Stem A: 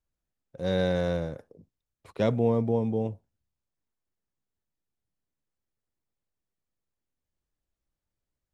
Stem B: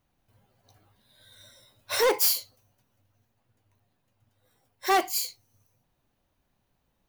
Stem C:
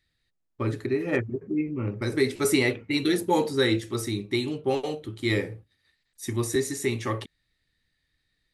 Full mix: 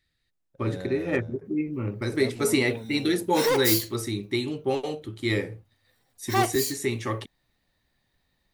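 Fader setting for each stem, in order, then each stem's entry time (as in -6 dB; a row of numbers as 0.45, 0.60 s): -12.5, -1.5, -0.5 dB; 0.00, 1.45, 0.00 s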